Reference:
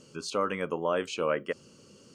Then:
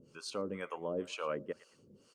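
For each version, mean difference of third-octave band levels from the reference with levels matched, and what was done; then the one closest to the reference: 5.0 dB: treble shelf 9 kHz -2.5 dB; on a send: feedback delay 113 ms, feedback 34%, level -21.5 dB; on the sum: harmonic tremolo 2.1 Hz, depth 100%, crossover 560 Hz; trim -2.5 dB; Opus 48 kbps 48 kHz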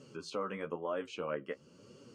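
3.0 dB: high-pass 81 Hz; treble shelf 4.1 kHz -11 dB; flange 1 Hz, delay 6.7 ms, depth 9.4 ms, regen +22%; compression 1.5:1, threshold -53 dBFS, peak gain reduction 9.5 dB; trim +4 dB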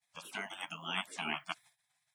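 11.5 dB: high-pass 290 Hz 24 dB/octave; expander -47 dBFS; spectral gate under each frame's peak -25 dB weak; treble shelf 4.5 kHz -5 dB; trim +11.5 dB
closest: second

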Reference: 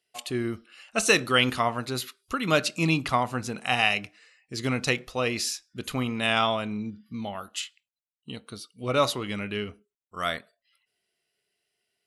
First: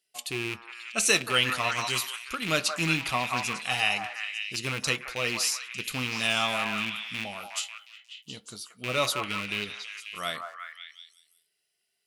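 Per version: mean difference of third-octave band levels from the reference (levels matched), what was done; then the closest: 8.0 dB: rattle on loud lows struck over -32 dBFS, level -18 dBFS; treble shelf 3.3 kHz +11 dB; flange 0.91 Hz, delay 5 ms, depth 1.6 ms, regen -63%; repeats whose band climbs or falls 180 ms, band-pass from 990 Hz, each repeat 0.7 oct, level -2 dB; trim -2 dB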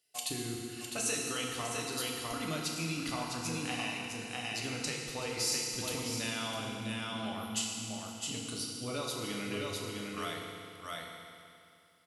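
12.5 dB: delay 655 ms -8 dB; compression, threshold -33 dBFS, peak gain reduction 17 dB; tone controls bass +2 dB, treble +10 dB; FDN reverb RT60 2.5 s, low-frequency decay 1×, high-frequency decay 0.95×, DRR -1.5 dB; trim -5.5 dB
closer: first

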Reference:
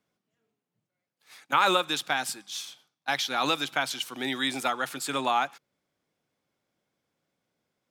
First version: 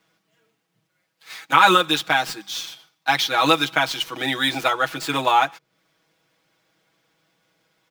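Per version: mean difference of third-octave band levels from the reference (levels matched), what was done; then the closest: 2.5 dB: median filter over 5 samples; comb 6.2 ms, depth 90%; tape noise reduction on one side only encoder only; trim +6 dB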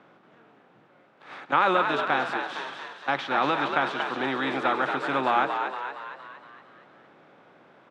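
10.5 dB: spectral levelling over time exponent 0.6; low-pass 1.9 kHz 12 dB/octave; on a send: frequency-shifting echo 232 ms, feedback 54%, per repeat +70 Hz, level -6 dB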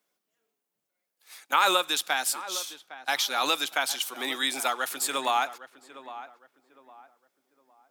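5.5 dB: high-pass 360 Hz 12 dB/octave; treble shelf 7.5 kHz +12 dB; filtered feedback delay 809 ms, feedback 34%, low-pass 1.5 kHz, level -13.5 dB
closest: first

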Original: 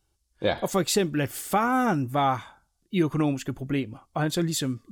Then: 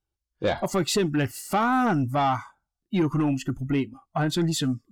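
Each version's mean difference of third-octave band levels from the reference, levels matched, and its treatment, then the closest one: 4.0 dB: spectral noise reduction 17 dB; treble shelf 6.7 kHz -11 dB; in parallel at -2 dB: peak limiter -21 dBFS, peak gain reduction 9 dB; on the sum: saturation -16 dBFS, distortion -17 dB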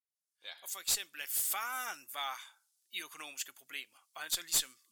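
14.0 dB: fade-in on the opening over 1.54 s; Bessel high-pass 3 kHz, order 2; treble shelf 10 kHz +9.5 dB; one-sided clip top -27.5 dBFS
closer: first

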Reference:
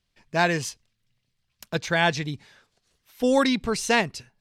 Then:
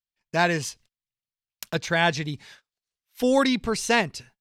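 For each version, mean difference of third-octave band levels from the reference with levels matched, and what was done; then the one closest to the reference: 1.0 dB: gate -52 dBFS, range -29 dB; tape noise reduction on one side only encoder only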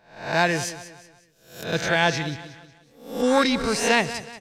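8.0 dB: reverse spectral sustain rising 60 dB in 0.52 s; on a send: feedback delay 184 ms, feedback 40%, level -14 dB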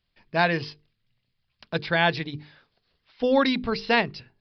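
4.5 dB: hum notches 50/100/150/200/250/300/350/400/450 Hz; resampled via 11.025 kHz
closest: first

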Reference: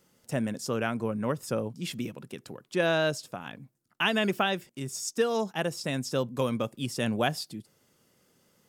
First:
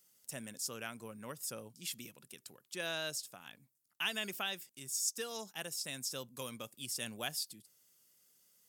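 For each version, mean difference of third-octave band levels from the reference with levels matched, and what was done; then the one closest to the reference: 7.0 dB: pre-emphasis filter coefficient 0.9; trim +1 dB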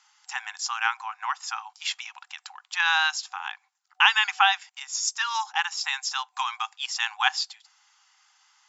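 17.5 dB: FFT band-pass 750–7600 Hz; trim +9 dB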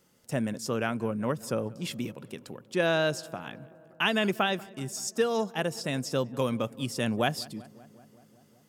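2.0 dB: filtered feedback delay 190 ms, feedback 75%, low-pass 2.1 kHz, level -21.5 dB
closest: third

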